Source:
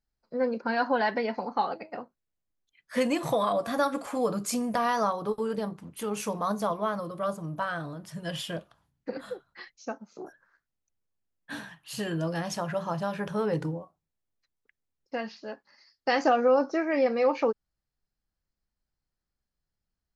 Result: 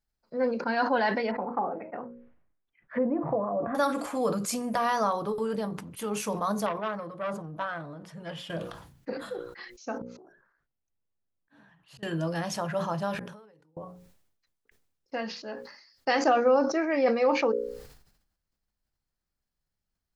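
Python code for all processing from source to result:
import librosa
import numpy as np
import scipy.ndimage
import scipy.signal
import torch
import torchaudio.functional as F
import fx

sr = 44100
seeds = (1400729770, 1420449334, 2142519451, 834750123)

y = fx.chain(x, sr, fx.env_lowpass_down(base_hz=660.0, full_db=-24.0),
    fx.lowpass(hz=2100.0, slope=24), at=(1.31, 3.75))
y = fx.chain(y, sr, fx.lowpass(hz=1900.0, slope=6),
    fx.low_shelf(hz=120.0, db=-9.5),
    fx.transformer_sat(knee_hz=1200.0), at=(6.66, 8.5))
y = fx.chain(y, sr, fx.lowpass(hz=1200.0, slope=6),
    fx.auto_swell(attack_ms=647.0), at=(9.98, 12.03))
y = fx.chain(y, sr, fx.low_shelf(hz=180.0, db=-10.0),
    fx.gate_flip(shuts_db=-30.0, range_db=-32),
    fx.pre_swell(db_per_s=27.0), at=(13.15, 13.77))
y = fx.hum_notches(y, sr, base_hz=60, count=9)
y = fx.sustainer(y, sr, db_per_s=68.0)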